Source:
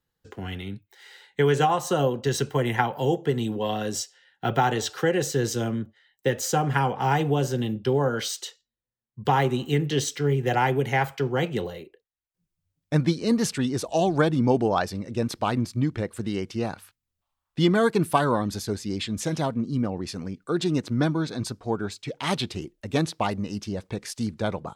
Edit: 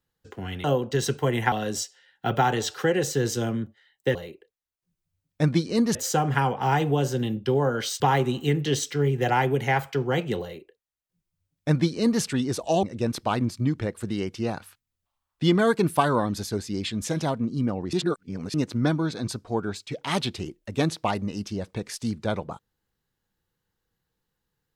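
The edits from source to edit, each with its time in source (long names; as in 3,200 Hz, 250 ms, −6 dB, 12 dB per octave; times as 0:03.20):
0:00.64–0:01.96: remove
0:02.84–0:03.71: remove
0:08.39–0:09.25: remove
0:11.67–0:13.47: duplicate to 0:06.34
0:14.08–0:14.99: remove
0:20.09–0:20.70: reverse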